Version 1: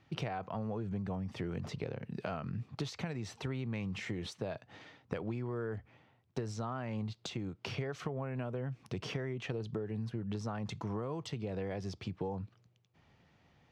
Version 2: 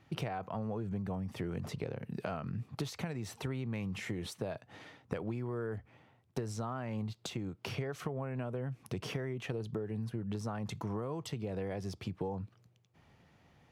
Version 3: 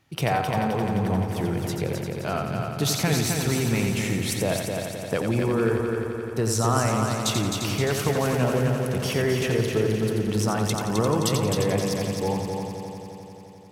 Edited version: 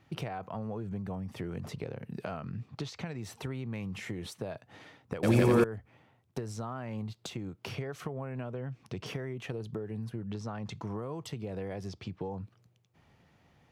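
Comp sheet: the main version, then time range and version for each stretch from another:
2
0:02.46–0:03.18: punch in from 1
0:05.23–0:05.64: punch in from 3
0:08.41–0:09.06: punch in from 1
0:10.28–0:10.84: punch in from 1
0:11.88–0:12.31: punch in from 1

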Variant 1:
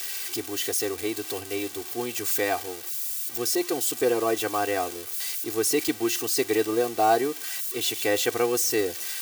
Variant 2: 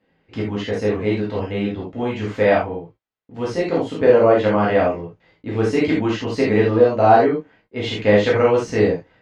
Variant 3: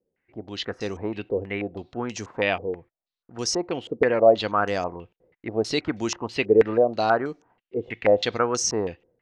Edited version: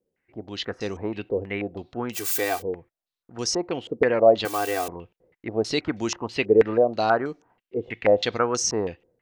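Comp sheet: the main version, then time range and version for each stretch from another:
3
0:02.15–0:02.60: punch in from 1, crossfade 0.06 s
0:04.45–0:04.88: punch in from 1
not used: 2

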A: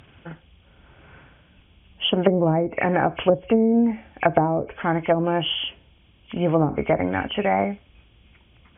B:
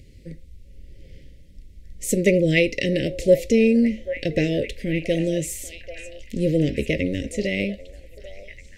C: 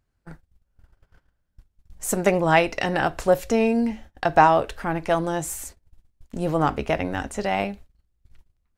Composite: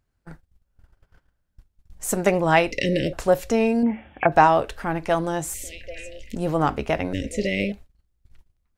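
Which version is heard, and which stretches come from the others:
C
0:02.71–0:03.13: punch in from B
0:03.83–0:04.32: punch in from A
0:05.54–0:06.35: punch in from B
0:07.13–0:07.72: punch in from B

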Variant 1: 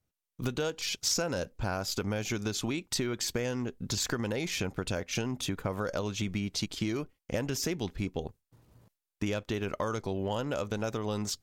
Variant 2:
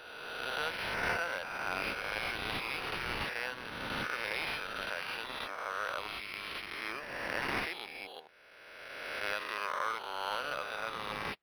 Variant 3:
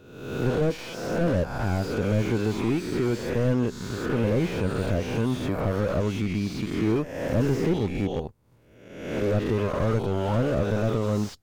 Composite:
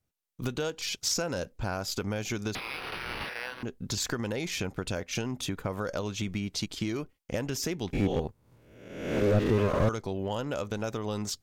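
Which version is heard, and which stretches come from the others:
1
0:02.55–0:03.63: punch in from 2
0:07.93–0:09.89: punch in from 3

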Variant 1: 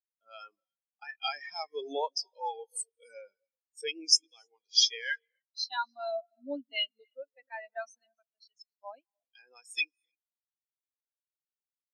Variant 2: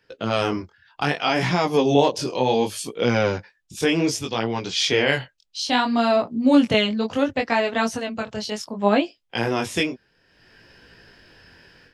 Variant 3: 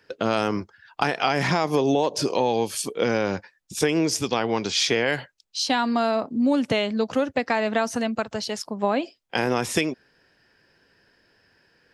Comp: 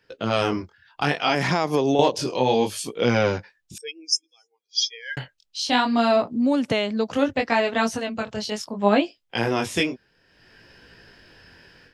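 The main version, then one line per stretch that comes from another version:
2
0:01.35–0:01.99: punch in from 3
0:03.78–0:05.17: punch in from 1
0:06.33–0:07.15: punch in from 3

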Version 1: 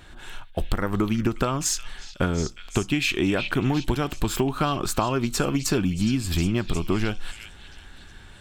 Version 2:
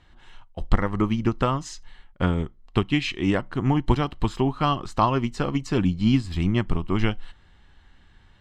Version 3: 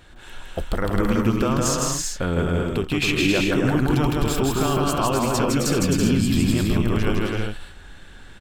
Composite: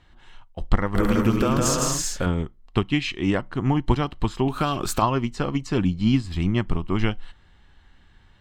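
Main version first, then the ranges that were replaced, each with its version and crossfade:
2
0:00.95–0:02.26: punch in from 3
0:04.48–0:05.02: punch in from 1

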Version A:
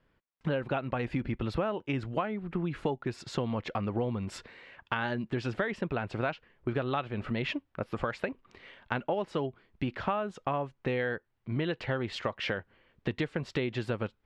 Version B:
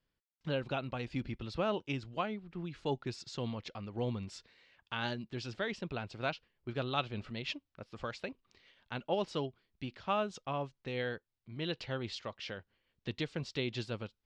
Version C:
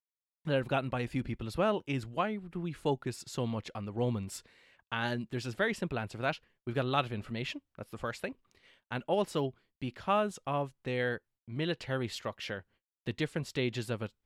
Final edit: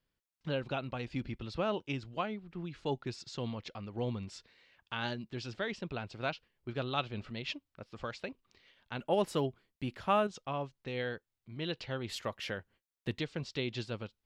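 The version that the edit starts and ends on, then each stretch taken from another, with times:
B
0:08.99–0:10.27: punch in from C
0:12.09–0:13.19: punch in from C
not used: A

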